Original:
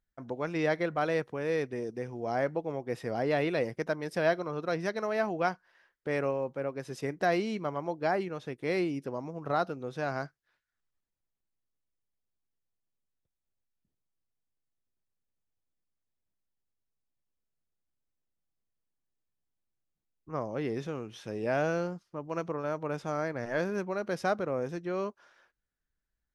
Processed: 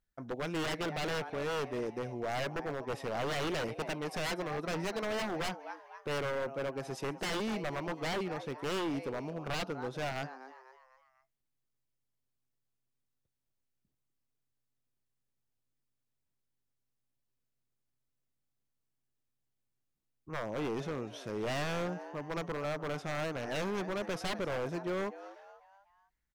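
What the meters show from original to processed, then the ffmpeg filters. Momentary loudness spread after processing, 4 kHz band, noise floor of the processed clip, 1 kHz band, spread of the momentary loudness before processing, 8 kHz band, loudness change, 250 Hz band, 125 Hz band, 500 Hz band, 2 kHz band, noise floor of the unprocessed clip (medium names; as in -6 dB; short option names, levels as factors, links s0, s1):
6 LU, +5.5 dB, -83 dBFS, -4.0 dB, 9 LU, no reading, -4.0 dB, -3.5 dB, -2.5 dB, -5.0 dB, -2.5 dB, under -85 dBFS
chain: -filter_complex "[0:a]asplit=5[s0][s1][s2][s3][s4];[s1]adelay=248,afreqshift=130,volume=0.15[s5];[s2]adelay=496,afreqshift=260,volume=0.0676[s6];[s3]adelay=744,afreqshift=390,volume=0.0302[s7];[s4]adelay=992,afreqshift=520,volume=0.0136[s8];[s0][s5][s6][s7][s8]amix=inputs=5:normalize=0,aeval=exprs='0.0335*(abs(mod(val(0)/0.0335+3,4)-2)-1)':c=same"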